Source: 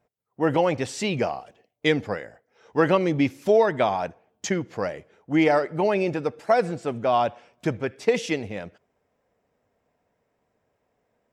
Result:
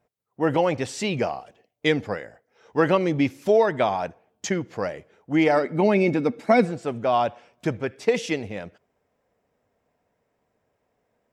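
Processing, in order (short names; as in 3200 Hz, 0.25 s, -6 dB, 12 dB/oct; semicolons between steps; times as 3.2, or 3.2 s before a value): 5.56–6.64 small resonant body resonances 240/2200/3800 Hz, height 13 dB -> 16 dB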